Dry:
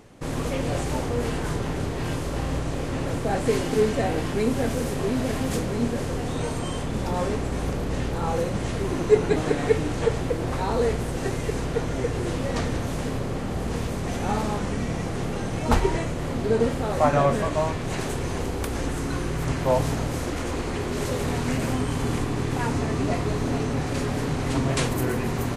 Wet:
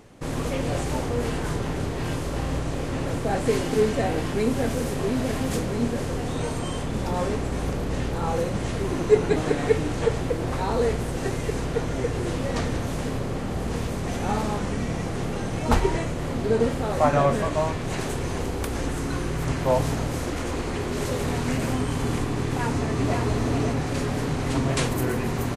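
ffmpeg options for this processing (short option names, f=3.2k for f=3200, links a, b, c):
-filter_complex "[0:a]asplit=2[a][b];[b]afade=t=in:st=22.42:d=0.01,afade=t=out:st=23.17:d=0.01,aecho=0:1:550|1100|1650:0.530884|0.0796327|0.0119449[c];[a][c]amix=inputs=2:normalize=0"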